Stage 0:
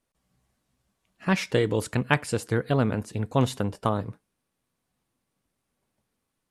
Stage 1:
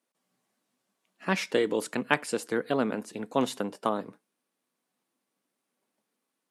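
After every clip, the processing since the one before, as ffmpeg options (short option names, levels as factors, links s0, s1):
-af "highpass=f=210:w=0.5412,highpass=f=210:w=1.3066,volume=0.841"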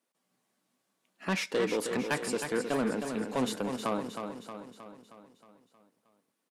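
-af "asoftclip=type=tanh:threshold=0.075,aecho=1:1:314|628|942|1256|1570|1884|2198:0.447|0.246|0.135|0.0743|0.0409|0.0225|0.0124"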